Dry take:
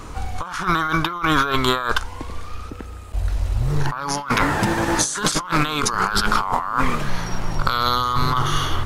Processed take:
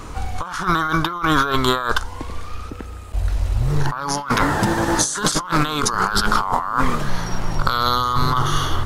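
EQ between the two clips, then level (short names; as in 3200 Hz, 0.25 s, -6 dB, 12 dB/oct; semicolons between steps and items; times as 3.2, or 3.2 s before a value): dynamic EQ 2400 Hz, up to -7 dB, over -42 dBFS, Q 2.7; +1.5 dB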